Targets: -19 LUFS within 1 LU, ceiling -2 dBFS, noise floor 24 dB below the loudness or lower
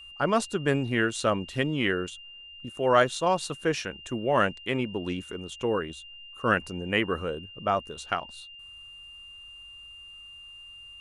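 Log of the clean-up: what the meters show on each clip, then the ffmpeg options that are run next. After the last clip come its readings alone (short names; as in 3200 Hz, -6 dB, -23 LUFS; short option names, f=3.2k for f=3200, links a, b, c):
steady tone 2800 Hz; tone level -44 dBFS; loudness -28.0 LUFS; peak -9.0 dBFS; loudness target -19.0 LUFS
-> -af "bandreject=f=2.8k:w=30"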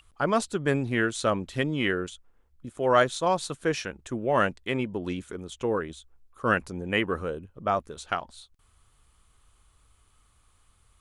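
steady tone none; loudness -28.0 LUFS; peak -8.5 dBFS; loudness target -19.0 LUFS
-> -af "volume=9dB,alimiter=limit=-2dB:level=0:latency=1"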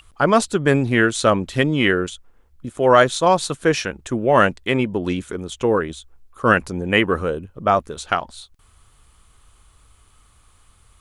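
loudness -19.0 LUFS; peak -2.0 dBFS; noise floor -55 dBFS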